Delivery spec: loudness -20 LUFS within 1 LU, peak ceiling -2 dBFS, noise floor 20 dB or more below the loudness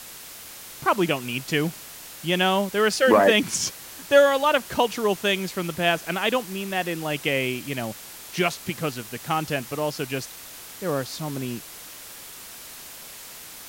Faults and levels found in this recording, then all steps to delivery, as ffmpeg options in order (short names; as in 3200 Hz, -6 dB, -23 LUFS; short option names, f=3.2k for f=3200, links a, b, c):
noise floor -42 dBFS; noise floor target -44 dBFS; loudness -24.0 LUFS; peak -3.5 dBFS; loudness target -20.0 LUFS
-> -af "afftdn=nr=6:nf=-42"
-af "volume=4dB,alimiter=limit=-2dB:level=0:latency=1"